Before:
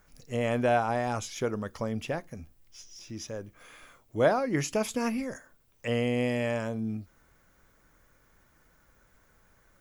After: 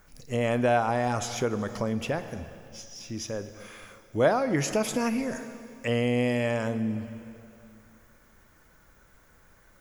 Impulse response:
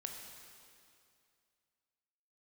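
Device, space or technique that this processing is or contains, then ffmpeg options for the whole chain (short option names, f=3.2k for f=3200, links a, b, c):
ducked reverb: -filter_complex "[0:a]asplit=3[a][b][c];[1:a]atrim=start_sample=2205[d];[b][d]afir=irnorm=-1:irlink=0[e];[c]apad=whole_len=432384[f];[e][f]sidechaincompress=threshold=-34dB:ratio=8:attack=40:release=110,volume=0.5dB[g];[a][g]amix=inputs=2:normalize=0"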